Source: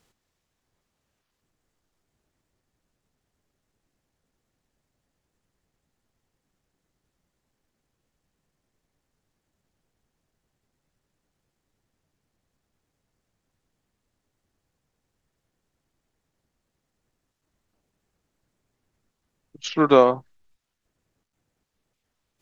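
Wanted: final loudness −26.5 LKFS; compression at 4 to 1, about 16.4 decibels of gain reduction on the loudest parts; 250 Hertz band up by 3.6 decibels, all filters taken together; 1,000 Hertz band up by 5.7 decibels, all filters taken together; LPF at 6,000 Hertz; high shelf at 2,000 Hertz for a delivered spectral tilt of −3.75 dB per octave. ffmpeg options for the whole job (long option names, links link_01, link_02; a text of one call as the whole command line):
ffmpeg -i in.wav -af "lowpass=6000,equalizer=frequency=250:width_type=o:gain=4,equalizer=frequency=1000:width_type=o:gain=5.5,highshelf=frequency=2000:gain=4.5,acompressor=threshold=-26dB:ratio=4,volume=3dB" out.wav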